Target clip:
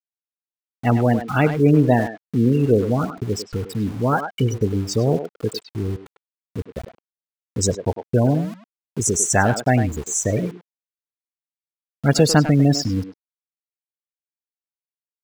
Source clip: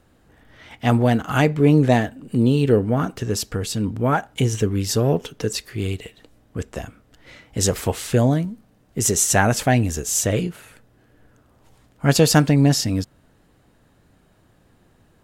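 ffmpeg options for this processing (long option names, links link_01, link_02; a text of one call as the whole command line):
ffmpeg -i in.wav -filter_complex "[0:a]afftfilt=real='re*gte(hypot(re,im),0.112)':imag='im*gte(hypot(re,im),0.112)':win_size=1024:overlap=0.75,aeval=exprs='val(0)*gte(abs(val(0)),0.02)':channel_layout=same,asplit=2[link_01][link_02];[link_02]adelay=100,highpass=300,lowpass=3400,asoftclip=type=hard:threshold=-11.5dB,volume=-8dB[link_03];[link_01][link_03]amix=inputs=2:normalize=0" out.wav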